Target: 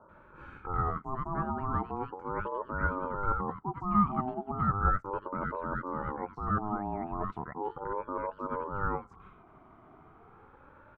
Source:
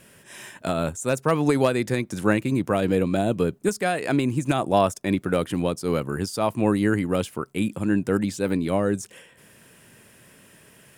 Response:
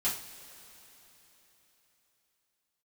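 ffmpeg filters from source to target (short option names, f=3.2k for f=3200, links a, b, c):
-filter_complex "[0:a]areverse,acompressor=threshold=-30dB:ratio=6,areverse,lowpass=f=740:t=q:w=8.1,acrossover=split=550[a][b];[b]adelay=90[c];[a][c]amix=inputs=2:normalize=0,aeval=exprs='val(0)*sin(2*PI*630*n/s+630*0.2/0.36*sin(2*PI*0.36*n/s))':c=same"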